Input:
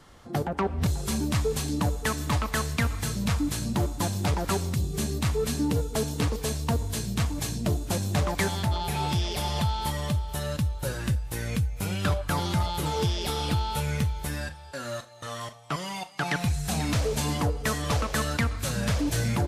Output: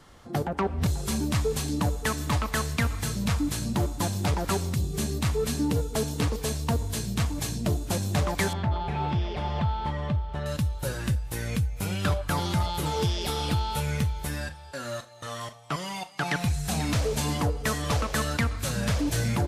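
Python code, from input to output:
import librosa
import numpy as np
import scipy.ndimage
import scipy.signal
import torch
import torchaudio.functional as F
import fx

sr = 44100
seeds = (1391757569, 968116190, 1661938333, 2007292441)

y = fx.lowpass(x, sr, hz=2200.0, slope=12, at=(8.53, 10.46))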